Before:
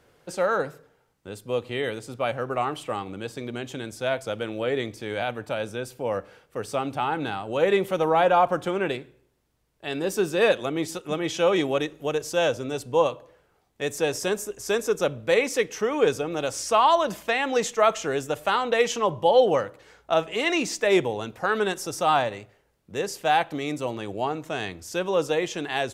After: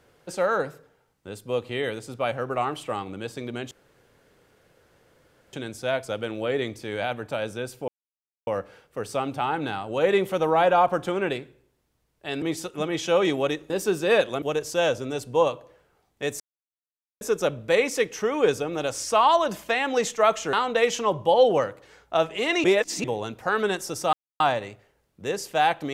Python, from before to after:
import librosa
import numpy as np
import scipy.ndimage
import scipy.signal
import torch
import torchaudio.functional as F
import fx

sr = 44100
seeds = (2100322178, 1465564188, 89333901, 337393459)

y = fx.edit(x, sr, fx.insert_room_tone(at_s=3.71, length_s=1.82),
    fx.insert_silence(at_s=6.06, length_s=0.59),
    fx.move(start_s=10.01, length_s=0.72, to_s=12.01),
    fx.silence(start_s=13.99, length_s=0.81),
    fx.cut(start_s=18.12, length_s=0.38),
    fx.reverse_span(start_s=20.61, length_s=0.4),
    fx.insert_silence(at_s=22.1, length_s=0.27), tone=tone)